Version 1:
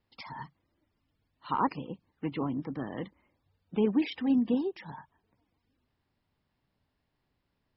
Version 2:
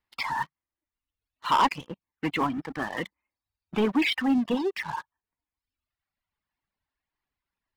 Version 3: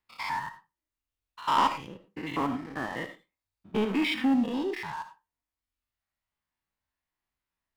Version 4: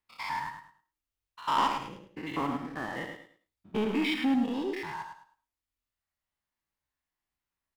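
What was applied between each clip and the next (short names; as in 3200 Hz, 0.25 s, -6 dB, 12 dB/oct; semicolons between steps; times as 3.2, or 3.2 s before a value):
reverb removal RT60 1.5 s; graphic EQ 125/250/500/1000/2000 Hz -9/-4/-6/+4/+5 dB; sample leveller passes 3
stepped spectrum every 0.1 s; on a send at -8.5 dB: reverb RT60 0.25 s, pre-delay 35 ms
feedback echo 0.106 s, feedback 25%, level -7 dB; gain -2.5 dB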